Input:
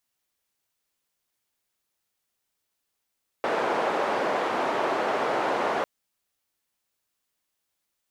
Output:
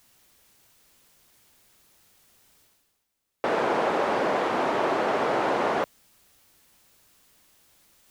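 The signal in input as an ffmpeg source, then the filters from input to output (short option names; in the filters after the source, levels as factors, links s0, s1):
-f lavfi -i "anoisesrc=c=white:d=2.4:r=44100:seed=1,highpass=f=440,lowpass=f=790,volume=-4.1dB"
-af "lowshelf=f=330:g=6,areverse,acompressor=mode=upward:threshold=0.00631:ratio=2.5,areverse"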